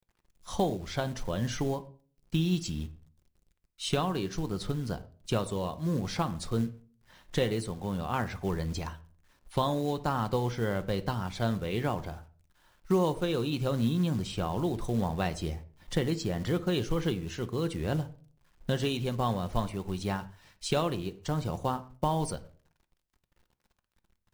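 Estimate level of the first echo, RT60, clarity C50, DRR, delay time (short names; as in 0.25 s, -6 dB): none, 0.40 s, 17.0 dB, 10.0 dB, none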